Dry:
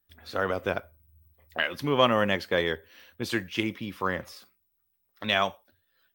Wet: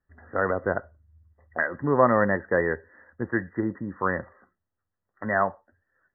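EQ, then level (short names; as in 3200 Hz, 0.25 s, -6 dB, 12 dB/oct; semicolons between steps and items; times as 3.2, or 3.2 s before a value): brick-wall FIR low-pass 2000 Hz; +3.0 dB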